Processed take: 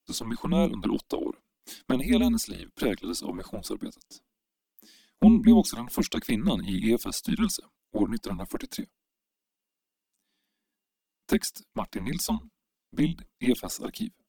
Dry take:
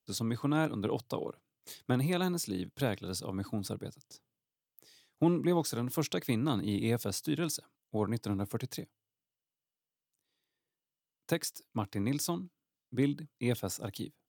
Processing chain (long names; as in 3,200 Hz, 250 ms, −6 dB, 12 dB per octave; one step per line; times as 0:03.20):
flanger swept by the level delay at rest 9.6 ms, full sweep at −25.5 dBFS
frequency shifter −120 Hz
low shelf with overshoot 170 Hz −9.5 dB, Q 3
level +8 dB